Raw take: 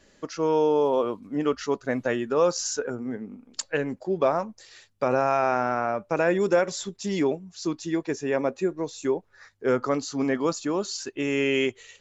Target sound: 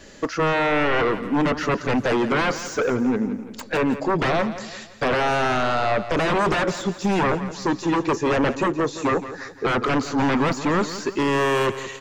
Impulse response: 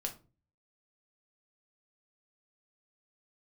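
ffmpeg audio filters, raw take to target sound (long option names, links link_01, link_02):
-filter_complex "[0:a]aeval=exprs='0.316*sin(PI/2*6.31*val(0)/0.316)':channel_layout=same,acrossover=split=2500[link_01][link_02];[link_02]acompressor=threshold=-31dB:ratio=4:attack=1:release=60[link_03];[link_01][link_03]amix=inputs=2:normalize=0,aecho=1:1:170|340|510|680:0.224|0.0963|0.0414|0.0178,volume=-6.5dB"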